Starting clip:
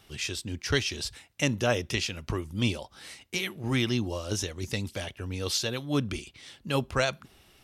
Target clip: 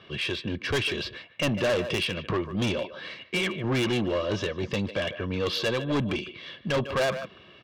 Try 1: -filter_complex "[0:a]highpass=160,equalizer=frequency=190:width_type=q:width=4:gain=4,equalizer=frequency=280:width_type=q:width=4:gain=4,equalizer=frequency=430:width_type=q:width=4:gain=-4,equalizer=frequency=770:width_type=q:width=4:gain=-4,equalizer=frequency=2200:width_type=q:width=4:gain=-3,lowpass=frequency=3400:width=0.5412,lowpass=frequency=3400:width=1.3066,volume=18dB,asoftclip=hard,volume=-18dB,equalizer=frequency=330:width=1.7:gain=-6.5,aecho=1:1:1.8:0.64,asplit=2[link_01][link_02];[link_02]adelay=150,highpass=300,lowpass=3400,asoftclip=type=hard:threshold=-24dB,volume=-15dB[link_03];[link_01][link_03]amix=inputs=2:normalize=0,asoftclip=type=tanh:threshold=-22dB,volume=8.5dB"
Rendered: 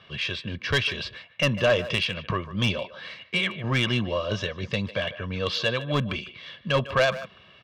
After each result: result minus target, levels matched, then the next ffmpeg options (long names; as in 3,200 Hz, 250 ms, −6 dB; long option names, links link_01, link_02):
soft clipping: distortion −9 dB; 250 Hz band −4.0 dB
-filter_complex "[0:a]highpass=160,equalizer=frequency=190:width_type=q:width=4:gain=4,equalizer=frequency=280:width_type=q:width=4:gain=4,equalizer=frequency=430:width_type=q:width=4:gain=-4,equalizer=frequency=770:width_type=q:width=4:gain=-4,equalizer=frequency=2200:width_type=q:width=4:gain=-3,lowpass=frequency=3400:width=0.5412,lowpass=frequency=3400:width=1.3066,volume=18dB,asoftclip=hard,volume=-18dB,equalizer=frequency=330:width=1.7:gain=-6.5,aecho=1:1:1.8:0.64,asplit=2[link_01][link_02];[link_02]adelay=150,highpass=300,lowpass=3400,asoftclip=type=hard:threshold=-24dB,volume=-15dB[link_03];[link_01][link_03]amix=inputs=2:normalize=0,asoftclip=type=tanh:threshold=-30dB,volume=8.5dB"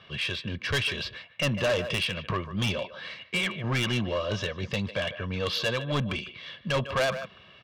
250 Hz band −3.5 dB
-filter_complex "[0:a]highpass=160,equalizer=frequency=190:width_type=q:width=4:gain=4,equalizer=frequency=280:width_type=q:width=4:gain=4,equalizer=frequency=430:width_type=q:width=4:gain=-4,equalizer=frequency=770:width_type=q:width=4:gain=-4,equalizer=frequency=2200:width_type=q:width=4:gain=-3,lowpass=frequency=3400:width=0.5412,lowpass=frequency=3400:width=1.3066,volume=18dB,asoftclip=hard,volume=-18dB,equalizer=frequency=330:width=1.7:gain=4.5,aecho=1:1:1.8:0.64,asplit=2[link_01][link_02];[link_02]adelay=150,highpass=300,lowpass=3400,asoftclip=type=hard:threshold=-24dB,volume=-15dB[link_03];[link_01][link_03]amix=inputs=2:normalize=0,asoftclip=type=tanh:threshold=-30dB,volume=8.5dB"